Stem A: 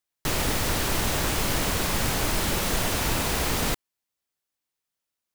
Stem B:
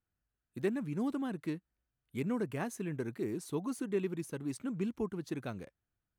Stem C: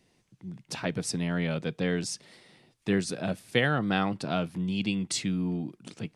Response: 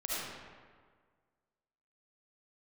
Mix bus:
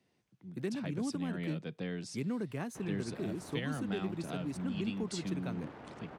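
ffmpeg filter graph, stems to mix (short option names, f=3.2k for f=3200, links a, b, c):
-filter_complex "[0:a]lowpass=1.1k,aeval=exprs='abs(val(0))':c=same,adelay=2500,volume=-16dB[a];[1:a]volume=2.5dB[b];[2:a]volume=-7.5dB[c];[a][b][c]amix=inputs=3:normalize=0,highpass=110,highshelf=f=5.9k:g=-9.5,acrossover=split=210|3000[d][e][f];[e]acompressor=threshold=-40dB:ratio=3[g];[d][g][f]amix=inputs=3:normalize=0"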